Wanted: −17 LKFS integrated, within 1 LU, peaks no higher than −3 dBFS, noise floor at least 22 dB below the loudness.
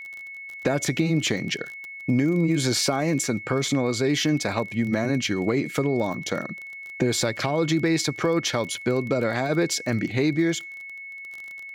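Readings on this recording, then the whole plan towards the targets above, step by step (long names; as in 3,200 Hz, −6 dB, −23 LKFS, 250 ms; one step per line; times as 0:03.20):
crackle rate 24 per second; interfering tone 2,200 Hz; level of the tone −36 dBFS; integrated loudness −24.5 LKFS; sample peak −9.5 dBFS; target loudness −17.0 LKFS
→ click removal
notch filter 2,200 Hz, Q 30
level +7.5 dB
brickwall limiter −3 dBFS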